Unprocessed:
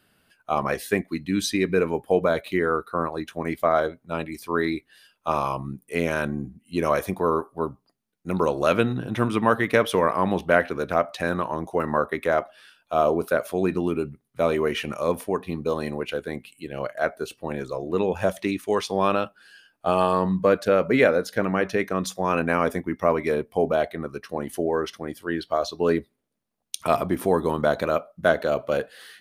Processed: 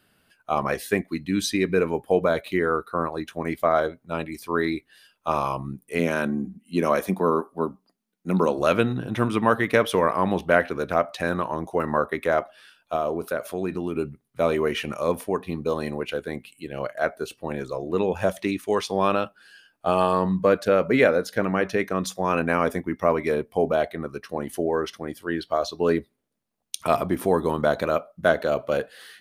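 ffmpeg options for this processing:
-filter_complex "[0:a]asettb=1/sr,asplit=3[a][b][c];[a]atrim=end=5.994[d];[b]atrim=start=5.99:end=8.59,asetpts=PTS-STARTPTS,afade=t=in:d=0.004:c=qsin,afade=t=out:st=2.596:d=0.004:c=qsin,lowshelf=f=150:t=q:w=3:g=-6.5[e];[c]atrim=start=8.586[f];[d][e]acrossfade=d=0.004:c1=hsin:c2=qsin[g];[g][f]acrossfade=d=0.004:c1=qsin:c2=hsin,asettb=1/sr,asplit=3[h][i][j];[h]atrim=end=12.964[k];[i]atrim=start=12.96:end=13.96,asetpts=PTS-STARTPTS,afade=t=in:d=0.004:c=qsin,afade=t=out:st=0.996:d=0.004:c=qsin,acompressor=threshold=-30dB:ratio=1.5:attack=3.2:release=140:knee=1:detection=peak[l];[j]atrim=start=13.956[m];[k][l]acrossfade=d=0.004:c1=hsin:c2=qsin[n];[n][m]acrossfade=d=0.004:c1=qsin:c2=hsin"

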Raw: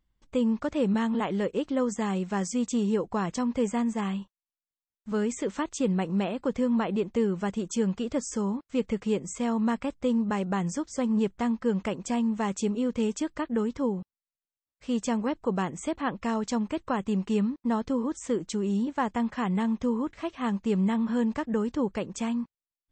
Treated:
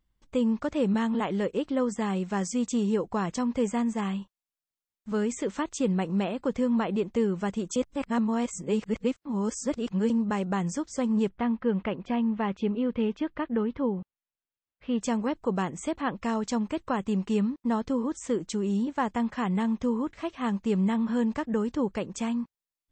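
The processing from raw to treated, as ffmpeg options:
-filter_complex "[0:a]asettb=1/sr,asplit=3[a][b][c];[a]atrim=end=1.574[d];[b]atrim=start=1.57:end=2.18,asetpts=PTS-STARTPTS,afade=t=in:d=0.004:c=qsin,afade=t=out:st=0.606:d=0.004:c=qsin,equalizer=f=6.6k:t=o:w=0.27:g=-7[e];[c]atrim=start=2.176[f];[d][e]acrossfade=d=0.004:c1=hsin:c2=qsin[g];[g][f]acrossfade=d=0.004:c1=qsin:c2=hsin,asettb=1/sr,asplit=3[h][i][j];[h]atrim=end=11.294[k];[i]atrim=start=11.29:end=15.01,asetpts=PTS-STARTPTS,afade=t=in:d=0.004:c=qsin,afade=t=out:st=3.716:d=0.004:c=qsin,lowpass=f=3.4k:w=0.5412,lowpass=f=3.4k:w=1.3066[l];[j]atrim=start=15.006[m];[k][l]acrossfade=d=0.004:c1=hsin:c2=qsin[n];[n][m]acrossfade=d=0.004:c1=qsin:c2=hsin,asplit=3[o][p][q];[o]atrim=end=7.762[r];[p]atrim=start=7.758:end=10.102,asetpts=PTS-STARTPTS,areverse[s];[q]atrim=start=10.098[t];[r][s]acrossfade=d=0.004:c1=hsin:c2=hsin[u];[u][t]acrossfade=d=0.004:c1=hsin:c2=hsin"

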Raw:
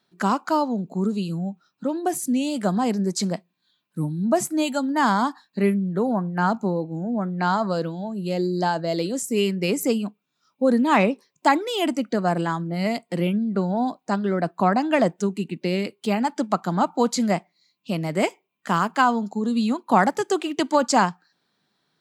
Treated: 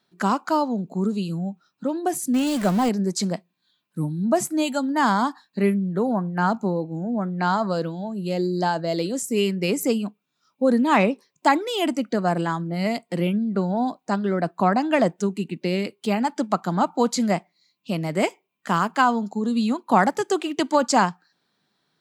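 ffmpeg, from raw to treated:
-filter_complex "[0:a]asettb=1/sr,asplit=3[a][b][c];[a]atrim=end=2.344[d];[b]atrim=start=2.34:end=2.89,asetpts=PTS-STARTPTS,afade=t=in:d=0.004:c=qsin,afade=t=out:st=0.546:d=0.004:c=qsin,aeval=exprs='val(0)+0.5*0.0473*sgn(val(0))':c=same[e];[c]atrim=start=2.886[f];[d][e]acrossfade=d=0.004:c1=hsin:c2=qsin[g];[g][f]acrossfade=d=0.004:c1=qsin:c2=hsin"

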